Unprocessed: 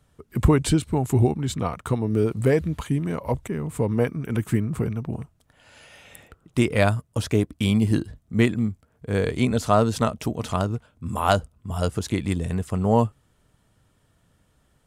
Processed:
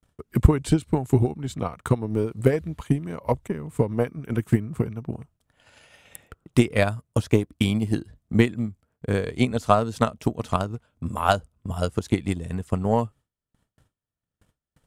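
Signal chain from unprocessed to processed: gate with hold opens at -52 dBFS; transient shaper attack +11 dB, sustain -2 dB; trim -6 dB

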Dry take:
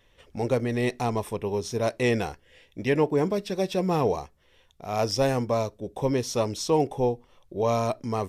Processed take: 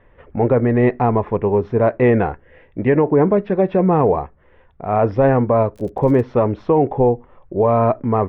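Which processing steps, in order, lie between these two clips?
low-pass 1.8 kHz 24 dB/octave; 5.75–6.22 s: crackle 58 per s -43 dBFS; loudness maximiser +16.5 dB; trim -5 dB

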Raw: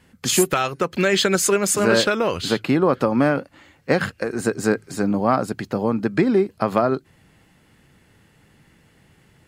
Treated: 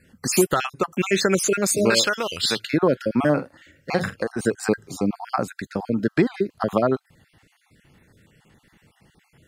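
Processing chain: random holes in the spectrogram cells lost 37%; 1.90–2.67 s: tilt shelf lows -8 dB, about 1.4 kHz; 3.19–4.23 s: doubling 47 ms -11 dB

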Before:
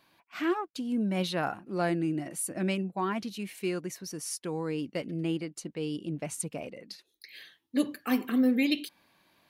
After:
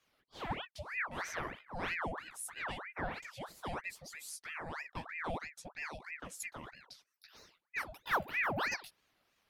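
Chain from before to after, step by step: chorus voices 6, 0.24 Hz, delay 15 ms, depth 4.2 ms; ring modulator with a swept carrier 1.3 kHz, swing 75%, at 3.1 Hz; trim -4 dB

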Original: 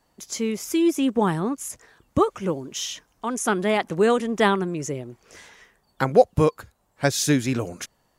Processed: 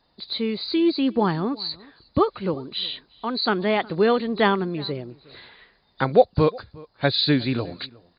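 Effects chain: knee-point frequency compression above 3.4 kHz 4:1; echo from a far wall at 62 m, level -23 dB

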